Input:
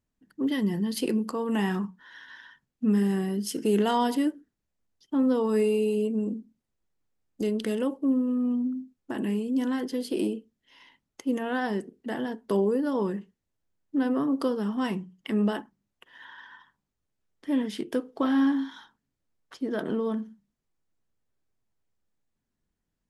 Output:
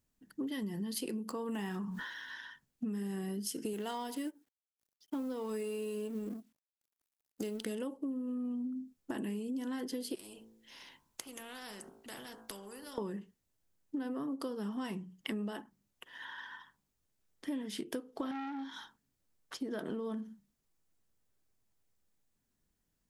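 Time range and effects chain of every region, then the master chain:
1.29–2.34 median filter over 3 samples + sustainer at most 62 dB/s
3.73–7.66 G.711 law mismatch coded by A + low shelf 220 Hz -6 dB
10.15–12.98 de-hum 55.66 Hz, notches 29 + compressor 2:1, threshold -36 dBFS + spectral compressor 2:1
18.31–18.73 bell 9900 Hz -9.5 dB 0.74 oct + core saturation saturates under 1000 Hz
whole clip: high shelf 5400 Hz +8.5 dB; compressor 12:1, threshold -35 dBFS

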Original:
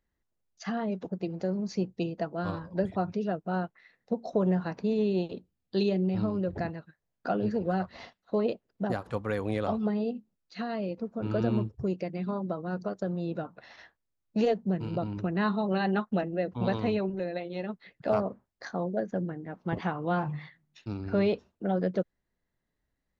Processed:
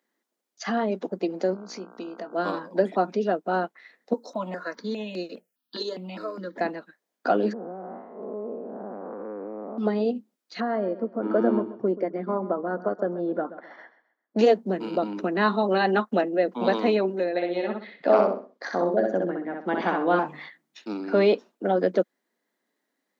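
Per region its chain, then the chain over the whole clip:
1.53–2.34 compressor 3:1, threshold -43 dBFS + buzz 60 Hz, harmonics 26, -56 dBFS -3 dB/oct + doubler 21 ms -11.5 dB
4.13–6.61 tilt +2 dB/oct + notch comb 390 Hz + step phaser 4.9 Hz 670–3300 Hz
7.53–9.78 time blur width 0.282 s + LPF 1200 Hz 24 dB/oct + compressor 4:1, threshold -38 dBFS
10.6–14.39 polynomial smoothing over 41 samples + feedback echo 0.131 s, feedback 31%, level -15 dB
17.29–20.19 air absorption 98 m + feedback echo 63 ms, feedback 30%, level -3.5 dB
whole clip: steep high-pass 230 Hz 36 dB/oct; notch 2700 Hz, Q 23; gain +8 dB

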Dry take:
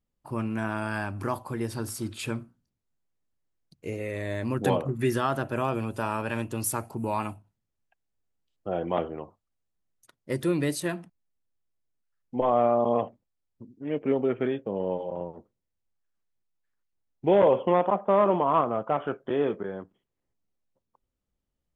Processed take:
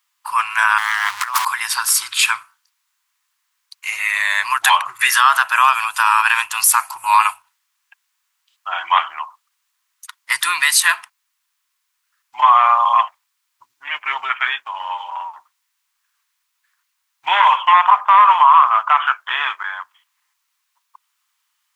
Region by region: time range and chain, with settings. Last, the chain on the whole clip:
0.78–1.45 zero-crossing step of -39 dBFS + negative-ratio compressor -34 dBFS, ratio -0.5 + Doppler distortion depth 0.89 ms
whole clip: elliptic high-pass 1000 Hz, stop band 50 dB; maximiser +24.5 dB; gain -1 dB

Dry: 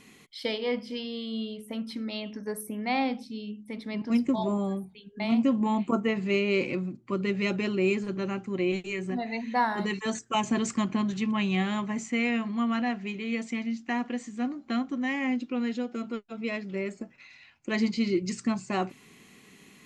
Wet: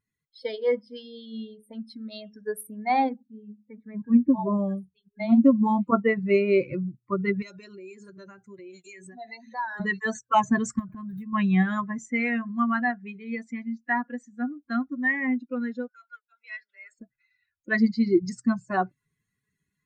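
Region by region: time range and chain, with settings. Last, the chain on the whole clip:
3.09–4.54 block floating point 5-bit + LPF 2500 Hz 24 dB/oct + notch comb 700 Hz
7.42–9.8 HPF 59 Hz + tone controls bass -6 dB, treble +12 dB + compressor 4:1, threshold -34 dBFS
10.79–11.33 median filter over 9 samples + compressor 12:1, threshold -30 dBFS
15.88–16.99 HPF 1400 Hz + transient shaper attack -1 dB, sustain +4 dB + frequency shift +17 Hz
whole clip: per-bin expansion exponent 2; resonant high shelf 2200 Hz -6.5 dB, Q 3; AGC gain up to 6 dB; gain +2.5 dB

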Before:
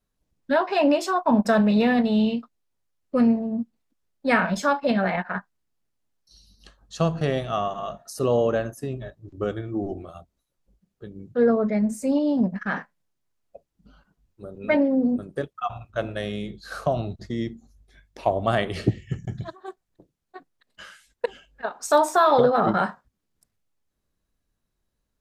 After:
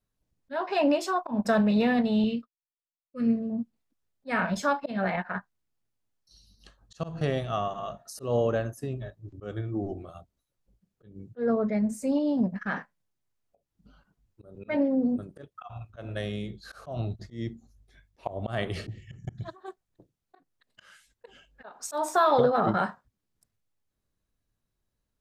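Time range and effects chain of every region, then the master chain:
2.24–3.5 expander -34 dBFS + Butterworth band-stop 830 Hz, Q 1.6
whole clip: bell 110 Hz +6 dB 0.4 oct; auto swell 0.168 s; gain -4 dB

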